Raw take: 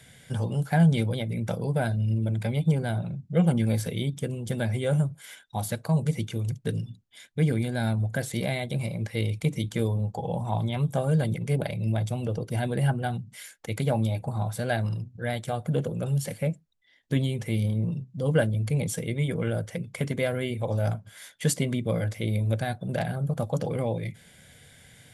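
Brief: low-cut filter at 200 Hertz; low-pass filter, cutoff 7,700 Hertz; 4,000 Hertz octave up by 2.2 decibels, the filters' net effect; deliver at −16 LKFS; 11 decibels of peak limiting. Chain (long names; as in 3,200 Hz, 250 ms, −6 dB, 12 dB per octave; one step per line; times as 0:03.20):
high-pass filter 200 Hz
low-pass filter 7,700 Hz
parametric band 4,000 Hz +3 dB
level +18.5 dB
brickwall limiter −4.5 dBFS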